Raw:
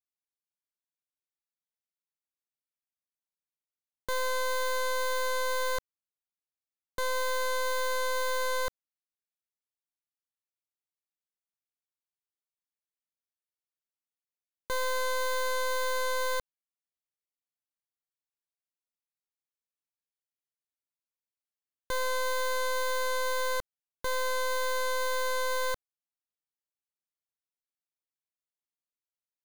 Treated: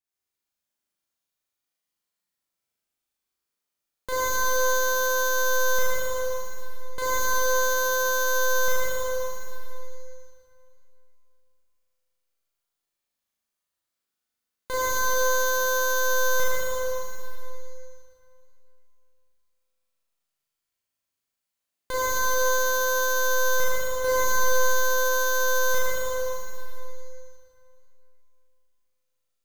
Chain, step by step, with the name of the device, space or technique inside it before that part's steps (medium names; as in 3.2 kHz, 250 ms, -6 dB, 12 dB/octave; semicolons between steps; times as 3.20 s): tunnel (flutter echo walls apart 6.7 m, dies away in 1.4 s; reverberation RT60 2.8 s, pre-delay 29 ms, DRR -4.5 dB)